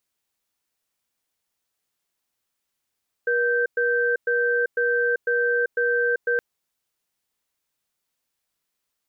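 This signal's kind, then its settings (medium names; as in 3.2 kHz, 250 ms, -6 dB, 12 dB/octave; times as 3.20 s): cadence 479 Hz, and 1.56 kHz, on 0.39 s, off 0.11 s, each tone -21.5 dBFS 3.12 s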